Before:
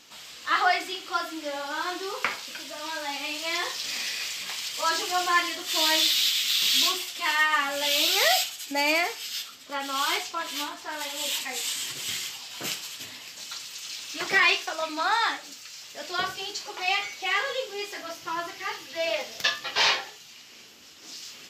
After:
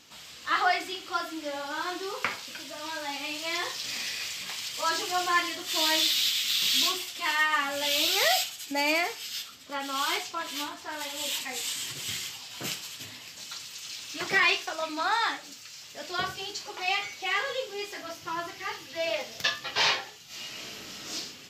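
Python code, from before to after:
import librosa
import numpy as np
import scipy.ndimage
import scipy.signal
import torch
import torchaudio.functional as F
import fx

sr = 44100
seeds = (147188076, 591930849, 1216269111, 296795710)

y = fx.reverb_throw(x, sr, start_s=20.26, length_s=0.89, rt60_s=0.81, drr_db=-11.5)
y = fx.peak_eq(y, sr, hz=95.0, db=8.0, octaves=2.2)
y = y * 10.0 ** (-2.5 / 20.0)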